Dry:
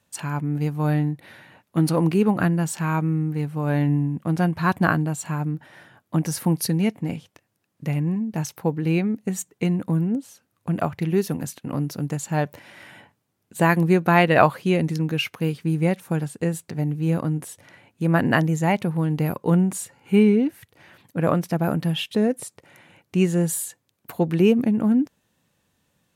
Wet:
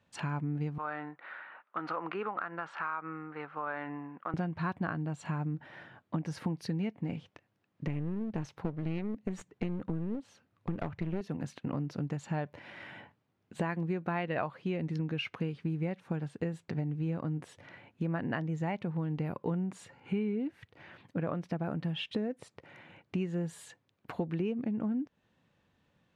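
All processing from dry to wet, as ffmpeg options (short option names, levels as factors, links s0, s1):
-filter_complex "[0:a]asettb=1/sr,asplit=3[s0][s1][s2];[s0]atrim=end=0.784[s3];[s1]atrim=start=0.78:end=4.34,asetpts=PTS-STARTPTS,afade=t=in:d=0.004:c=qsin,afade=t=out:st=3.556:d=0.004:c=qsin,highpass=660,lowpass=2500,equalizer=f=1300:w=2.6:g=13,acompressor=threshold=0.0316:ratio=2:attack=3.2:release=140:knee=1:detection=peak[s4];[s2]atrim=start=4.336[s5];[s3][s4]acrossfade=d=0.004:c1=hsin:c2=qsin[s6];[s6][s5]acrossfade=d=0.004:c1=qsin:c2=hsin,asettb=1/sr,asplit=3[s7][s8][s9];[s7]atrim=end=7.874[s10];[s8]atrim=start=7.87:end=11.21,asetpts=PTS-STARTPTS,afade=t=in:d=0.004:c=qsin,afade=t=out:st=3.336:d=0.004:c=qsin,lowshelf=f=120:g=6,aeval=exprs='clip(val(0),-1,0.0299)':c=same[s11];[s9]atrim=start=11.206[s12];[s10][s11]acrossfade=d=0.004:c1=hsin:c2=qsin[s13];[s13][s12]acrossfade=d=0.004:c1=qsin:c2=hsin,lowpass=3300,acompressor=threshold=0.0355:ratio=6,volume=0.794"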